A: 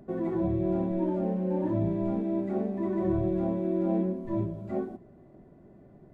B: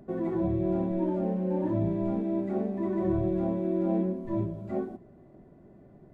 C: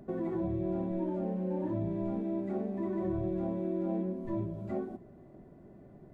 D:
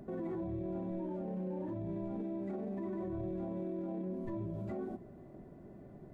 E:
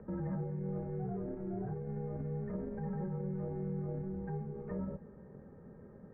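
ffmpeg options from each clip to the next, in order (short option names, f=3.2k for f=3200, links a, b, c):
-af anull
-af "acompressor=threshold=-34dB:ratio=2"
-af "alimiter=level_in=9.5dB:limit=-24dB:level=0:latency=1:release=35,volume=-9.5dB,volume=1dB"
-af "highpass=f=310:t=q:w=0.5412,highpass=f=310:t=q:w=1.307,lowpass=f=2.1k:t=q:w=0.5176,lowpass=f=2.1k:t=q:w=0.7071,lowpass=f=2.1k:t=q:w=1.932,afreqshift=-180,volume=4dB"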